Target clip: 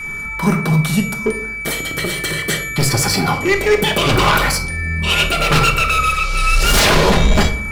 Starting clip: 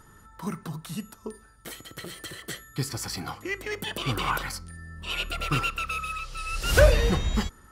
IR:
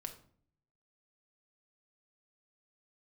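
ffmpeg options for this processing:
-filter_complex "[0:a]adynamicequalizer=threshold=0.00708:dfrequency=550:dqfactor=1.1:tfrequency=550:tqfactor=1.1:attack=5:release=100:ratio=0.375:range=3:mode=boostabove:tftype=bell,aeval=exprs='0.668*sin(PI/2*7.94*val(0)/0.668)':c=same,aeval=exprs='val(0)+0.0891*sin(2*PI*2300*n/s)':c=same,acontrast=23[s0];[1:a]atrim=start_sample=2205[s1];[s0][s1]afir=irnorm=-1:irlink=0,volume=0.531"

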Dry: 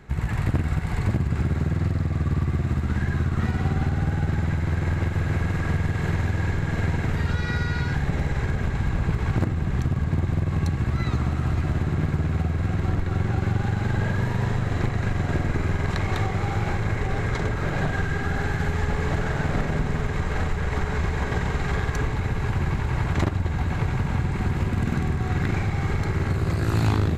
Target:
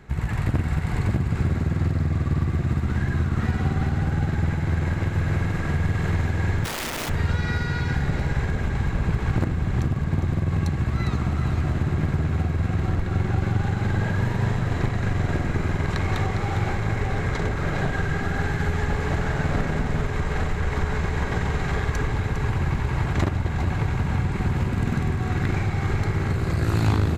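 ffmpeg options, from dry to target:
-filter_complex "[0:a]aecho=1:1:405:0.355,asplit=3[s0][s1][s2];[s0]afade=t=out:st=6.64:d=0.02[s3];[s1]aeval=exprs='(mod(16.8*val(0)+1,2)-1)/16.8':c=same,afade=t=in:st=6.64:d=0.02,afade=t=out:st=7.08:d=0.02[s4];[s2]afade=t=in:st=7.08:d=0.02[s5];[s3][s4][s5]amix=inputs=3:normalize=0"

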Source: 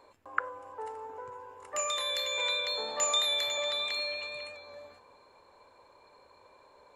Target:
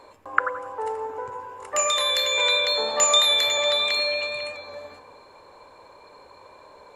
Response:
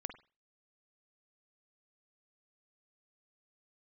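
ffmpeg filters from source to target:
-filter_complex "[0:a]asplit=2[s0][s1];[1:a]atrim=start_sample=2205,asetrate=27342,aresample=44100[s2];[s1][s2]afir=irnorm=-1:irlink=0,volume=2.66[s3];[s0][s3]amix=inputs=2:normalize=0,volume=0.891"

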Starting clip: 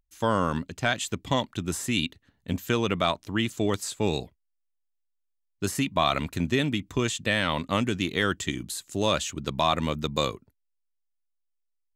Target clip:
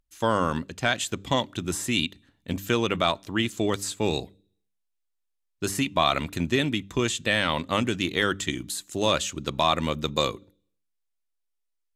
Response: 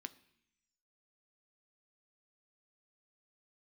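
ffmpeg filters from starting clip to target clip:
-filter_complex "[0:a]bandreject=f=98.31:t=h:w=4,bandreject=f=196.62:t=h:w=4,bandreject=f=294.93:t=h:w=4,asplit=2[s0][s1];[1:a]atrim=start_sample=2205,asetrate=66150,aresample=44100[s2];[s1][s2]afir=irnorm=-1:irlink=0,volume=0.708[s3];[s0][s3]amix=inputs=2:normalize=0" -ar 32000 -c:a aac -b:a 96k

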